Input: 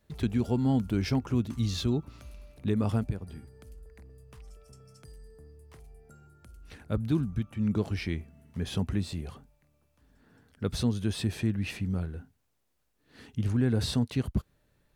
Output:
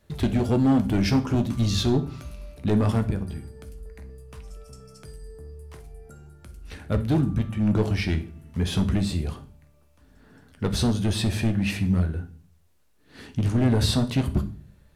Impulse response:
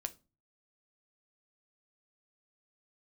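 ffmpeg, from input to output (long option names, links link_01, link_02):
-filter_complex "[0:a]asoftclip=type=hard:threshold=-23.5dB[link_01];[1:a]atrim=start_sample=2205,asetrate=26901,aresample=44100[link_02];[link_01][link_02]afir=irnorm=-1:irlink=0,volume=6.5dB"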